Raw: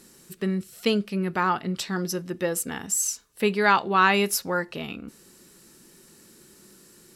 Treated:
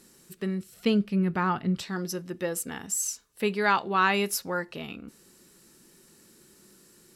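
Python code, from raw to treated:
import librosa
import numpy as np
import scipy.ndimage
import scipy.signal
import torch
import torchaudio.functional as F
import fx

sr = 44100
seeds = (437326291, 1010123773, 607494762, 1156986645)

y = fx.bass_treble(x, sr, bass_db=9, treble_db=-5, at=(0.74, 1.83))
y = F.gain(torch.from_numpy(y), -4.0).numpy()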